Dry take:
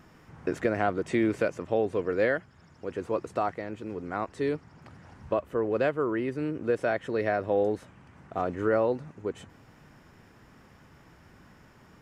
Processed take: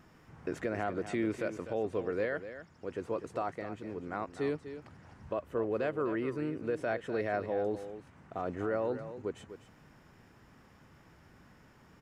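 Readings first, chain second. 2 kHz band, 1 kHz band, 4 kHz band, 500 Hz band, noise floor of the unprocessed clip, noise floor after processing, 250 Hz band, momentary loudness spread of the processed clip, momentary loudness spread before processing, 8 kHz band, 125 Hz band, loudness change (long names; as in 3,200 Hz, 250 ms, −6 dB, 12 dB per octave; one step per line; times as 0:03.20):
−6.5 dB, −6.5 dB, −5.5 dB, −6.5 dB, −57 dBFS, −61 dBFS, −5.5 dB, 13 LU, 11 LU, can't be measured, −5.5 dB, −6.5 dB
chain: brickwall limiter −19 dBFS, peak gain reduction 5.5 dB
single-tap delay 249 ms −11.5 dB
level −4.5 dB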